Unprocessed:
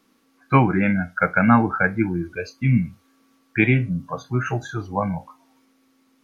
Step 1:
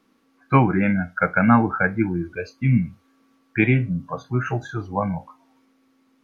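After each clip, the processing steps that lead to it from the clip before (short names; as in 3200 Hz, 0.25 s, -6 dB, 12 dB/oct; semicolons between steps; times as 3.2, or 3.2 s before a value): high shelf 4200 Hz -8.5 dB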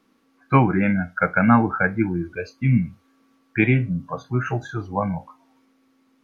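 nothing audible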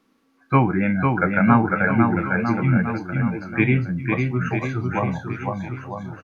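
bouncing-ball echo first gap 0.5 s, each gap 0.9×, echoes 5; gain -1 dB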